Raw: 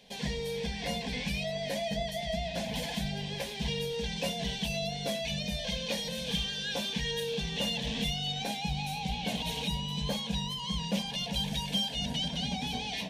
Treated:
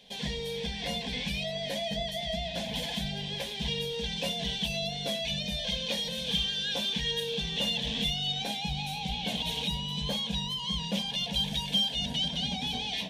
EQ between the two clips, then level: bell 3400 Hz +7 dB 0.45 oct; -1.0 dB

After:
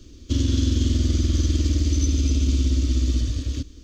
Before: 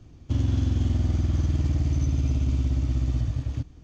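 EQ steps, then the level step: resonant high shelf 2900 Hz +6.5 dB, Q 1.5; fixed phaser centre 330 Hz, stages 4; +7.5 dB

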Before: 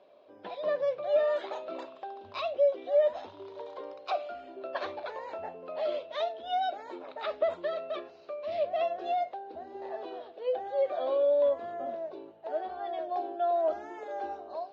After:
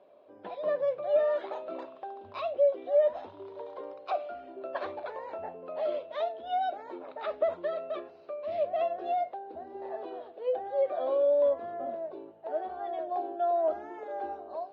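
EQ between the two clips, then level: LPF 1600 Hz 6 dB/oct; +1.0 dB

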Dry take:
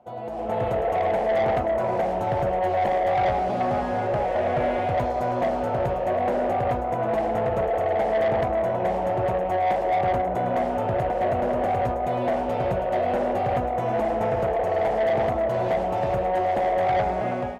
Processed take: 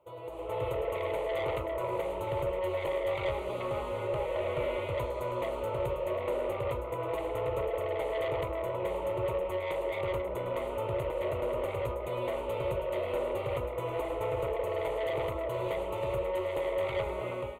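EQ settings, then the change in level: high shelf 4700 Hz +11 dB; fixed phaser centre 1100 Hz, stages 8; -4.5 dB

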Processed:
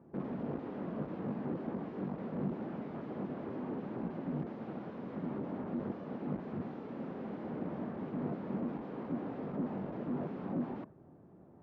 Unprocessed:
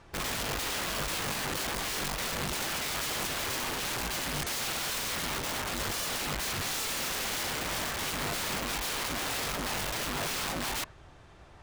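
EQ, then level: ladder band-pass 250 Hz, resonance 40%; air absorption 120 m; +13.5 dB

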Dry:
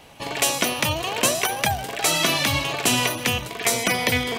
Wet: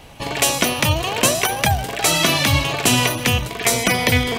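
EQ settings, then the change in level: low shelf 110 Hz +11.5 dB; +3.5 dB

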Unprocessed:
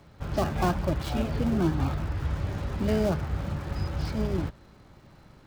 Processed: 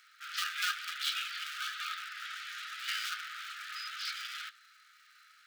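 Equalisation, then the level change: dynamic EQ 3400 Hz, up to +7 dB, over -56 dBFS, Q 1.6; brick-wall FIR high-pass 1200 Hz; +3.0 dB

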